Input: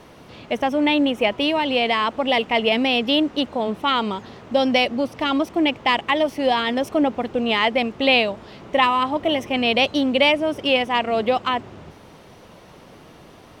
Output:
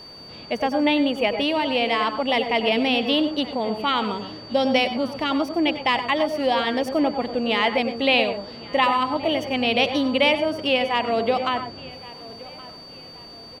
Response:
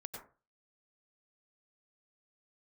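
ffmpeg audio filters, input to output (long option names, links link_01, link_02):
-filter_complex "[0:a]aeval=exprs='val(0)+0.0126*sin(2*PI*4600*n/s)':channel_layout=same,asplit=2[link_01][link_02];[link_02]adelay=1122,lowpass=frequency=4300:poles=1,volume=-20dB,asplit=2[link_03][link_04];[link_04]adelay=1122,lowpass=frequency=4300:poles=1,volume=0.39,asplit=2[link_05][link_06];[link_06]adelay=1122,lowpass=frequency=4300:poles=1,volume=0.39[link_07];[link_01][link_03][link_05][link_07]amix=inputs=4:normalize=0,asplit=2[link_08][link_09];[1:a]atrim=start_sample=2205,afade=type=out:start_time=0.18:duration=0.01,atrim=end_sample=8379[link_10];[link_09][link_10]afir=irnorm=-1:irlink=0,volume=1.5dB[link_11];[link_08][link_11]amix=inputs=2:normalize=0,volume=-6.5dB"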